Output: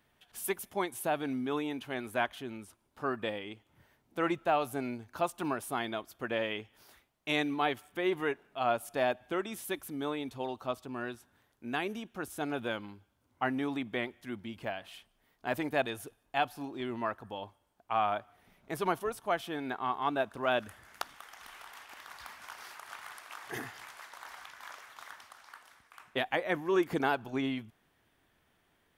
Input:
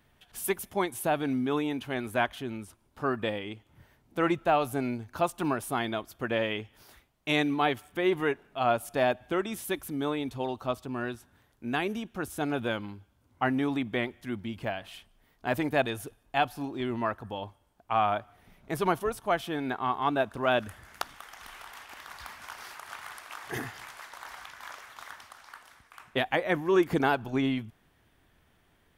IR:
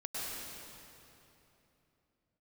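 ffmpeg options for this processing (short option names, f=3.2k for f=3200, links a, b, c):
-af "lowshelf=f=140:g=-9,volume=-3.5dB"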